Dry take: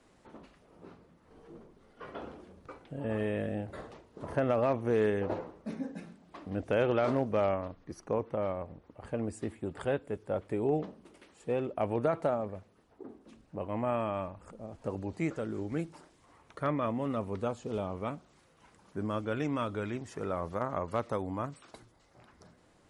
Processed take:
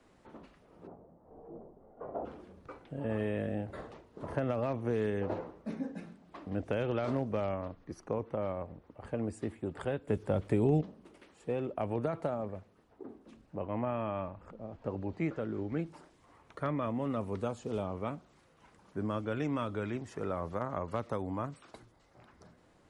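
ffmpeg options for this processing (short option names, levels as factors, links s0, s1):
-filter_complex "[0:a]asplit=3[s0][s1][s2];[s0]afade=t=out:st=0.86:d=0.02[s3];[s1]lowpass=f=710:t=q:w=2.8,afade=t=in:st=0.86:d=0.02,afade=t=out:st=2.24:d=0.02[s4];[s2]afade=t=in:st=2.24:d=0.02[s5];[s3][s4][s5]amix=inputs=3:normalize=0,asettb=1/sr,asplit=3[s6][s7][s8];[s6]atrim=end=13.604[s9];[s7]atrim=start=13.6:end=15.86,asetpts=PTS-STARTPTS,afade=t=in:d=0.004:c=qsin,afade=t=out:st=2.256:d=0.004:c=qsin,lowpass=4200[s10];[s8]atrim=start=15.856[s11];[s9][s10]acrossfade=d=0.004:c1=hsin:c2=qsin[s12];[s12][s11]acrossfade=d=0.004:c1=qsin:c2=hsin,asettb=1/sr,asplit=3[s13][s14][s15];[s13]atrim=end=17.194[s16];[s14]atrim=start=17.19:end=17.83,asetpts=PTS-STARTPTS,afade=t=in:d=0.004:c=qsin,afade=t=out:st=0.636:d=0.004:c=qsin,highshelf=f=6700:g=8[s17];[s15]atrim=start=17.826[s18];[s16][s17]acrossfade=d=0.004:c1=hsin:c2=qsin[s19];[s19][s18]acrossfade=d=0.004:c1=qsin:c2=hsin,asplit=3[s20][s21][s22];[s20]atrim=end=10.082[s23];[s21]atrim=start=10.078:end=10.812,asetpts=PTS-STARTPTS,volume=2.99[s24];[s22]atrim=start=10.808[s25];[s23][s24]acrossfade=d=0.004:c1=hsin:c2=hsin[s26];[s26][s25]acrossfade=d=0.004:c1=hsin:c2=hsin,highshelf=f=4300:g=-5.5,acrossover=split=230|3000[s27][s28][s29];[s28]acompressor=threshold=0.0282:ratio=6[s30];[s27][s30][s29]amix=inputs=3:normalize=0"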